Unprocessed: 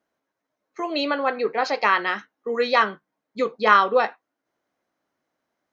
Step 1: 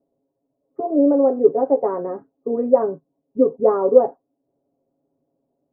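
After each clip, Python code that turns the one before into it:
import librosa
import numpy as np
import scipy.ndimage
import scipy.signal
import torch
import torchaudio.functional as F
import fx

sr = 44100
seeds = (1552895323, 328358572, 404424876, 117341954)

y = scipy.signal.sosfilt(scipy.signal.cheby2(4, 80, 3500.0, 'lowpass', fs=sr, output='sos'), x)
y = y + 0.83 * np.pad(y, (int(7.3 * sr / 1000.0), 0))[:len(y)]
y = y * 10.0 ** (8.0 / 20.0)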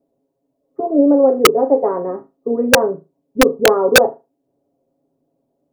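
y = fx.room_flutter(x, sr, wall_m=6.5, rt60_s=0.24)
y = (np.mod(10.0 ** (5.0 / 20.0) * y + 1.0, 2.0) - 1.0) / 10.0 ** (5.0 / 20.0)
y = y * 10.0 ** (3.5 / 20.0)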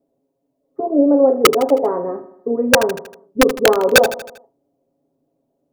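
y = fx.echo_feedback(x, sr, ms=79, feedback_pct=53, wet_db=-14.0)
y = y * 10.0 ** (-1.0 / 20.0)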